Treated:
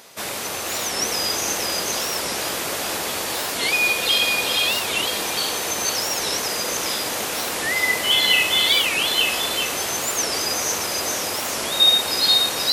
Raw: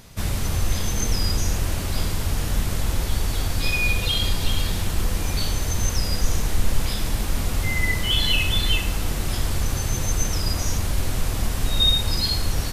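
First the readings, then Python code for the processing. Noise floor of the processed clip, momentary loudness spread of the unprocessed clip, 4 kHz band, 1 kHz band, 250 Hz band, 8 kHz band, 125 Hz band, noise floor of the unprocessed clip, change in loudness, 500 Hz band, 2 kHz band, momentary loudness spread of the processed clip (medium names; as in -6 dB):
-28 dBFS, 6 LU, +6.5 dB, +7.5 dB, -3.0 dB, +6.5 dB, -18.0 dB, -27 dBFS, +4.5 dB, +6.5 dB, +7.0 dB, 9 LU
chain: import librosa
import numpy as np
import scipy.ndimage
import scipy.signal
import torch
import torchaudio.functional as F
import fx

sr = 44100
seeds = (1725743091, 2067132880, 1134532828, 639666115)

p1 = fx.rattle_buzz(x, sr, strikes_db=-20.0, level_db=-28.0)
p2 = scipy.signal.sosfilt(scipy.signal.cheby1(2, 1.0, 480.0, 'highpass', fs=sr, output='sos'), p1)
p3 = p2 + fx.echo_multitap(p2, sr, ms=(481, 877), db=(-3.5, -5.5), dry=0)
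p4 = fx.record_warp(p3, sr, rpm=45.0, depth_cents=250.0)
y = p4 * librosa.db_to_amplitude(5.5)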